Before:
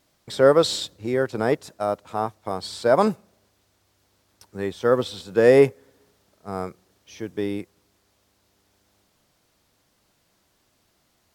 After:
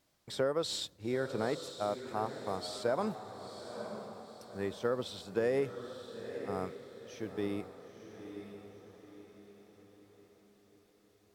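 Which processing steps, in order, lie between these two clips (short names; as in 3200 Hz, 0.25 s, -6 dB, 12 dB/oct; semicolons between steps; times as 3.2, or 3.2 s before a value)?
compressor 10:1, threshold -19 dBFS, peak gain reduction 10 dB; diffused feedback echo 0.949 s, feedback 44%, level -9 dB; gain -8.5 dB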